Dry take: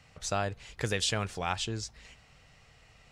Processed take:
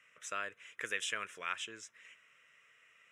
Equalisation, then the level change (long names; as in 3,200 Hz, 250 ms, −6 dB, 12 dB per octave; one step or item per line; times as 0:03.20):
high-pass filter 670 Hz 12 dB per octave
high-shelf EQ 9,500 Hz −9 dB
phaser with its sweep stopped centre 1,900 Hz, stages 4
0.0 dB